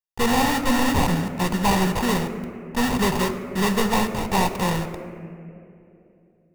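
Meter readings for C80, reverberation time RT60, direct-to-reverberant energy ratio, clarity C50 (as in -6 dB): 11.0 dB, 2.8 s, 8.5 dB, 10.0 dB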